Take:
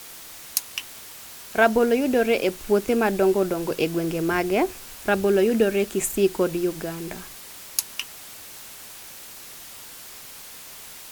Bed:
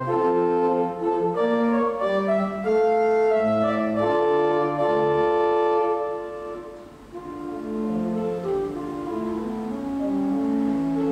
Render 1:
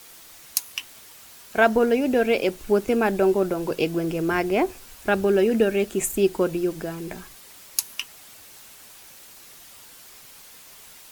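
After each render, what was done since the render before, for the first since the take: noise reduction 6 dB, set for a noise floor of -42 dBFS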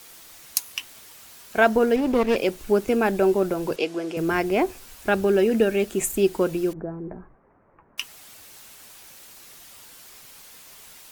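1.96–2.36 s: sliding maximum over 17 samples; 3.76–4.17 s: band-pass 360–7600 Hz; 6.73–7.98 s: Gaussian low-pass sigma 7.2 samples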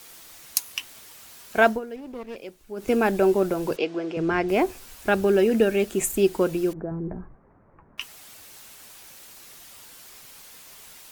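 1.67–2.90 s: dip -16 dB, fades 0.14 s; 3.77–4.49 s: distance through air 120 m; 6.91–8.01 s: tone controls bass +7 dB, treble -14 dB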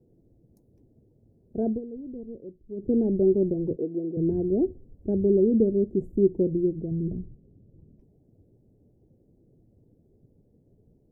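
inverse Chebyshev low-pass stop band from 1.1 kHz, stop band 50 dB; peaking EQ 110 Hz +7 dB 1.3 oct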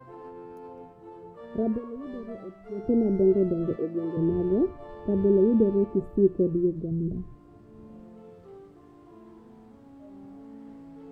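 add bed -22.5 dB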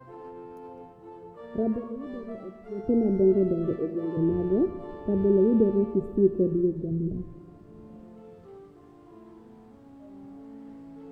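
plate-style reverb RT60 2.4 s, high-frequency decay 1×, DRR 13 dB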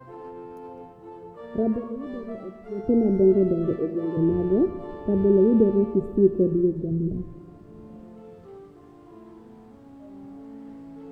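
trim +3 dB

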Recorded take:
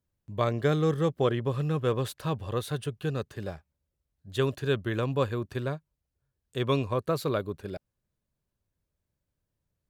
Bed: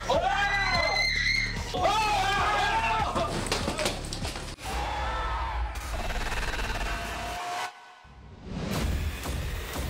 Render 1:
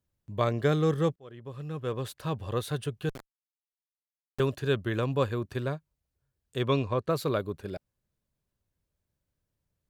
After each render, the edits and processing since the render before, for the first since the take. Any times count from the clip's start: 1.16–2.55 s: fade in; 3.09–4.40 s: Schmitt trigger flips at -26 dBFS; 6.68–7.10 s: low-pass 6.1 kHz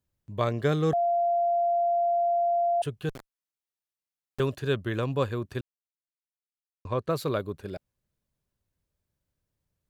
0.93–2.82 s: bleep 691 Hz -21.5 dBFS; 5.61–6.85 s: mute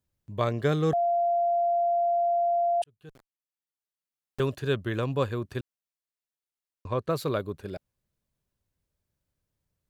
2.84–4.47 s: fade in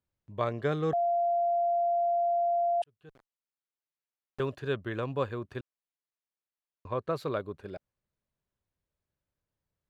low-pass 1.8 kHz 6 dB/octave; bass shelf 400 Hz -7.5 dB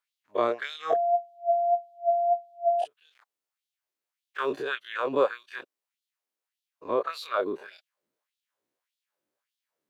every event in the spectrogram widened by 60 ms; LFO high-pass sine 1.7 Hz 280–3600 Hz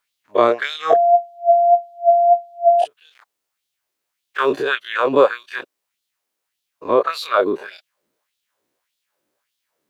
trim +11 dB; peak limiter -1 dBFS, peak gain reduction 1.5 dB

